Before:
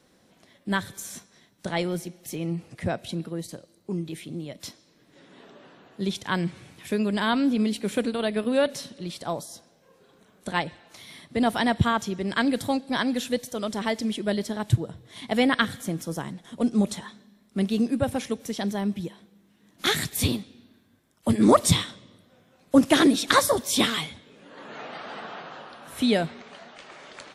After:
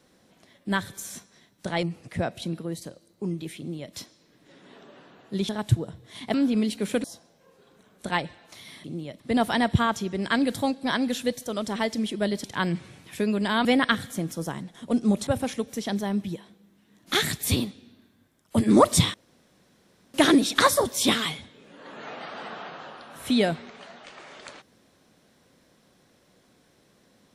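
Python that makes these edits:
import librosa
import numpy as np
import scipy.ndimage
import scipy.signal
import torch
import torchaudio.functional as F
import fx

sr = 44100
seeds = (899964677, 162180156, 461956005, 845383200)

y = fx.edit(x, sr, fx.cut(start_s=1.83, length_s=0.67),
    fx.duplicate(start_s=4.25, length_s=0.36, to_s=11.26),
    fx.swap(start_s=6.16, length_s=1.21, other_s=14.5, other_length_s=0.85),
    fx.cut(start_s=8.07, length_s=1.39),
    fx.cut(start_s=16.97, length_s=1.02),
    fx.room_tone_fill(start_s=21.86, length_s=1.0), tone=tone)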